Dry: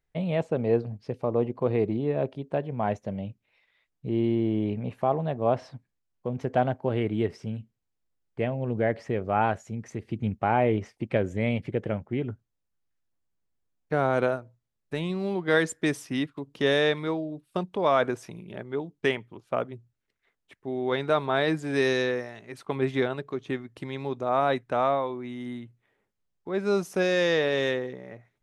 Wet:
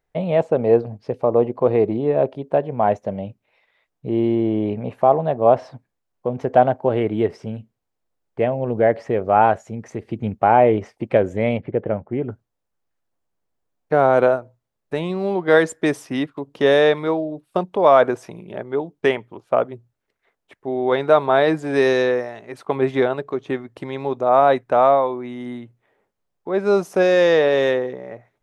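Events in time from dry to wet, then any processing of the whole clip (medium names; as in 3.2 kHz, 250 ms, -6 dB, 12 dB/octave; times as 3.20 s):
11.57–12.29 s: distance through air 470 m
whole clip: peaking EQ 670 Hz +9.5 dB 2.2 oct; trim +1.5 dB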